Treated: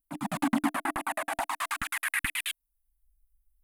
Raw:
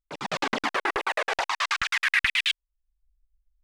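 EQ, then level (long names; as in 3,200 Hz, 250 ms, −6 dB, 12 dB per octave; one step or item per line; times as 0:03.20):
drawn EQ curve 120 Hz 0 dB, 300 Hz +11 dB, 420 Hz −28 dB, 670 Hz −1 dB, 5,700 Hz −14 dB, 10,000 Hz +14 dB
0.0 dB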